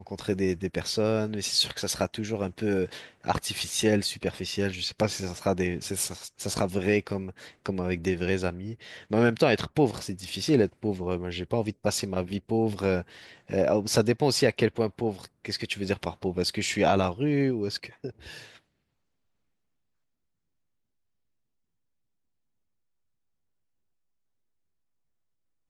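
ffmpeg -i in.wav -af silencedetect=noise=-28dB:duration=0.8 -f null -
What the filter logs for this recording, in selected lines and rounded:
silence_start: 18.08
silence_end: 25.70 | silence_duration: 7.62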